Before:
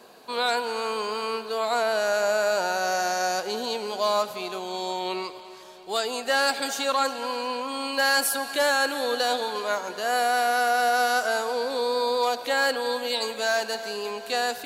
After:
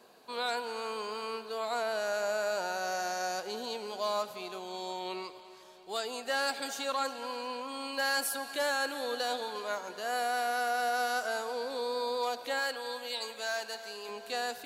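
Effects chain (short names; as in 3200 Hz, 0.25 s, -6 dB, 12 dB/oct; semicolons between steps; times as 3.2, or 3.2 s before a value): 12.59–14.09 low shelf 470 Hz -8.5 dB; gain -8.5 dB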